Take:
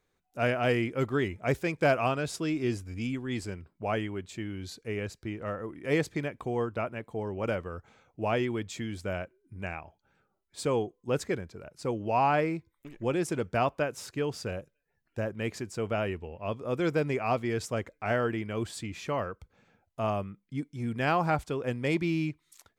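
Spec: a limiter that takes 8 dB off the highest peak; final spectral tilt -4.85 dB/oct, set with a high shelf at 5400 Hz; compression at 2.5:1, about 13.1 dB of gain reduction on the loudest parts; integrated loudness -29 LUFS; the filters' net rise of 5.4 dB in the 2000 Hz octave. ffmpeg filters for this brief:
-af "equalizer=f=2k:t=o:g=7.5,highshelf=f=5.4k:g=-4,acompressor=threshold=-40dB:ratio=2.5,volume=13dB,alimiter=limit=-17.5dB:level=0:latency=1"

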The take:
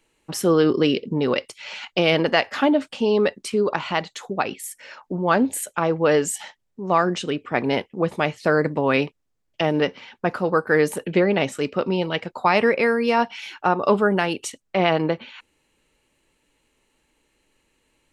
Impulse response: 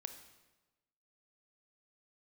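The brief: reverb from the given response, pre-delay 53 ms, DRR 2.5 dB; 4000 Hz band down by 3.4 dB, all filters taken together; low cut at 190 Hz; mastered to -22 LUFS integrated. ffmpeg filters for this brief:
-filter_complex "[0:a]highpass=190,equalizer=f=4k:t=o:g=-5.5,asplit=2[a][b];[1:a]atrim=start_sample=2205,adelay=53[c];[b][c]afir=irnorm=-1:irlink=0,volume=1dB[d];[a][d]amix=inputs=2:normalize=0,volume=-1.5dB"

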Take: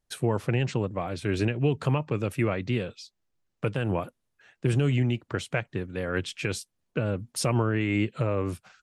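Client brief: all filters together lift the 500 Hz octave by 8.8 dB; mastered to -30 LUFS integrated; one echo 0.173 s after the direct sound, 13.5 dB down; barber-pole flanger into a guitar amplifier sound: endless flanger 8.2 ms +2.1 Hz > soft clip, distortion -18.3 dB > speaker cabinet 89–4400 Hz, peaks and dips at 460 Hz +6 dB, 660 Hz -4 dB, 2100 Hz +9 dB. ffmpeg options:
-filter_complex "[0:a]equalizer=f=500:t=o:g=6.5,aecho=1:1:173:0.211,asplit=2[a][b];[b]adelay=8.2,afreqshift=2.1[c];[a][c]amix=inputs=2:normalize=1,asoftclip=threshold=-18dB,highpass=89,equalizer=f=460:t=q:w=4:g=6,equalizer=f=660:t=q:w=4:g=-4,equalizer=f=2.1k:t=q:w=4:g=9,lowpass=f=4.4k:w=0.5412,lowpass=f=4.4k:w=1.3066,volume=-1.5dB"

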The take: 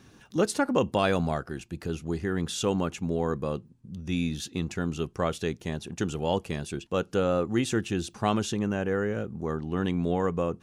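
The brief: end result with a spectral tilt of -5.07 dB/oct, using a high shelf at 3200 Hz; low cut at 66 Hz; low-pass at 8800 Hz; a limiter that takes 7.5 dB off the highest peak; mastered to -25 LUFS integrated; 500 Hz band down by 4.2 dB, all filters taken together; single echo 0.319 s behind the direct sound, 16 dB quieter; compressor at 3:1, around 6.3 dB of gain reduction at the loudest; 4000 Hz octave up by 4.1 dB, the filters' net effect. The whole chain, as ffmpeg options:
-af "highpass=66,lowpass=8.8k,equalizer=f=500:t=o:g=-5,highshelf=f=3.2k:g=-4.5,equalizer=f=4k:t=o:g=8.5,acompressor=threshold=-30dB:ratio=3,alimiter=level_in=1dB:limit=-24dB:level=0:latency=1,volume=-1dB,aecho=1:1:319:0.158,volume=11.5dB"

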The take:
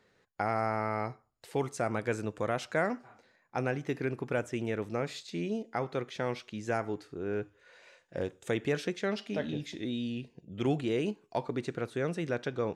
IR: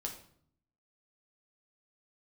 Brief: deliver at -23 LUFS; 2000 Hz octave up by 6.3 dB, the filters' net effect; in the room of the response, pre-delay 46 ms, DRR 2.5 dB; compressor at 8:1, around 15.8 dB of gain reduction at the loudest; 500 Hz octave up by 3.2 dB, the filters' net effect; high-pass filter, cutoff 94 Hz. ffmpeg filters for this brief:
-filter_complex "[0:a]highpass=94,equalizer=f=500:t=o:g=3.5,equalizer=f=2k:t=o:g=8,acompressor=threshold=-39dB:ratio=8,asplit=2[a][b];[1:a]atrim=start_sample=2205,adelay=46[c];[b][c]afir=irnorm=-1:irlink=0,volume=-2dB[d];[a][d]amix=inputs=2:normalize=0,volume=19dB"

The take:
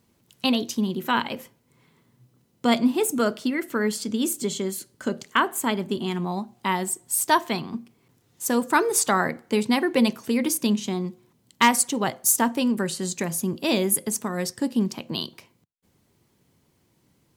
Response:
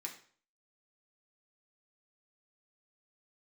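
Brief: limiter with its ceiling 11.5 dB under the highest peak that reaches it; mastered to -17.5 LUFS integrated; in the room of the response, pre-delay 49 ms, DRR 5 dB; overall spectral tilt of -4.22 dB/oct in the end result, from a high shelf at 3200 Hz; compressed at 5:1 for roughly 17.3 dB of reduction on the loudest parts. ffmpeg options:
-filter_complex "[0:a]highshelf=f=3.2k:g=-4,acompressor=threshold=-35dB:ratio=5,alimiter=level_in=5dB:limit=-24dB:level=0:latency=1,volume=-5dB,asplit=2[a][b];[1:a]atrim=start_sample=2205,adelay=49[c];[b][c]afir=irnorm=-1:irlink=0,volume=-3dB[d];[a][d]amix=inputs=2:normalize=0,volume=21dB"

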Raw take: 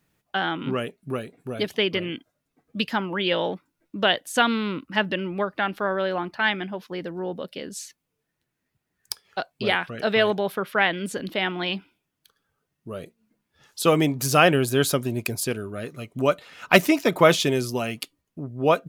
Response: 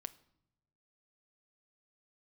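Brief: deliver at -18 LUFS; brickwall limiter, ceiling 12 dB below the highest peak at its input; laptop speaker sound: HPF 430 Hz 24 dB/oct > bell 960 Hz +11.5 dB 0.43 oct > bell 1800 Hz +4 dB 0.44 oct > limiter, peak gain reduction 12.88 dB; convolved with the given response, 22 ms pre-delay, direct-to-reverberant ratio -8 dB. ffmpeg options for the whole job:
-filter_complex "[0:a]alimiter=limit=-14.5dB:level=0:latency=1,asplit=2[a][b];[1:a]atrim=start_sample=2205,adelay=22[c];[b][c]afir=irnorm=-1:irlink=0,volume=12dB[d];[a][d]amix=inputs=2:normalize=0,highpass=f=430:w=0.5412,highpass=f=430:w=1.3066,equalizer=f=960:t=o:w=0.43:g=11.5,equalizer=f=1.8k:t=o:w=0.44:g=4,volume=6dB,alimiter=limit=-6.5dB:level=0:latency=1"

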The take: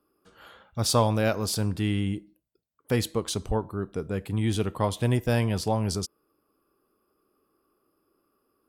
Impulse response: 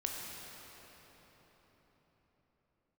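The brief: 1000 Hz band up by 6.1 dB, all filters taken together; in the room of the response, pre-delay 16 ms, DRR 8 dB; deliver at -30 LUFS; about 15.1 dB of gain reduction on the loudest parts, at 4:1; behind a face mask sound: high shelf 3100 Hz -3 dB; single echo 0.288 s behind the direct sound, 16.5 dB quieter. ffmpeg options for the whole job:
-filter_complex "[0:a]equalizer=f=1k:t=o:g=7.5,acompressor=threshold=-32dB:ratio=4,aecho=1:1:288:0.15,asplit=2[a][b];[1:a]atrim=start_sample=2205,adelay=16[c];[b][c]afir=irnorm=-1:irlink=0,volume=-10.5dB[d];[a][d]amix=inputs=2:normalize=0,highshelf=f=3.1k:g=-3,volume=5.5dB"

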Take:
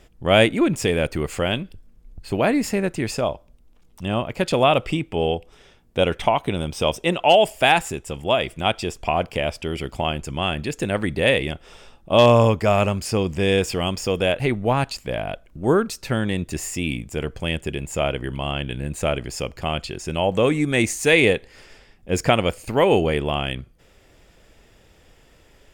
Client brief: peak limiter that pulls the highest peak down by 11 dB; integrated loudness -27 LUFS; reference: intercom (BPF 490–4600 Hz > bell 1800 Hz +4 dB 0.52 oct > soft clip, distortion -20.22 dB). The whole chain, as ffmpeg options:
-af "alimiter=limit=-14.5dB:level=0:latency=1,highpass=490,lowpass=4.6k,equalizer=f=1.8k:t=o:w=0.52:g=4,asoftclip=threshold=-15.5dB,volume=3dB"

